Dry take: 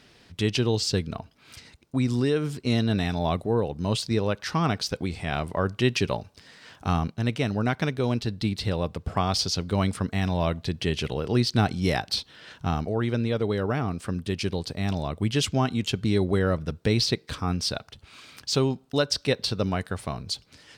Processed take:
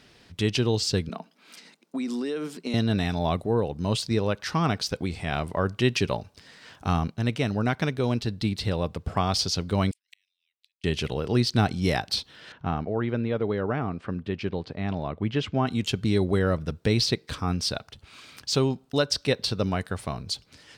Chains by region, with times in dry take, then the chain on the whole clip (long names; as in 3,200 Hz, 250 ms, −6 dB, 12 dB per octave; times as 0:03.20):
0:01.09–0:02.74: Chebyshev high-pass filter 170 Hz, order 6 + downward compressor 5 to 1, threshold −26 dBFS
0:09.91–0:10.84: Butterworth high-pass 2,100 Hz 48 dB per octave + gate with flip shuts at −39 dBFS, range −37 dB
0:12.52–0:15.67: low-pass filter 2,400 Hz + low-shelf EQ 77 Hz −9.5 dB
whole clip: no processing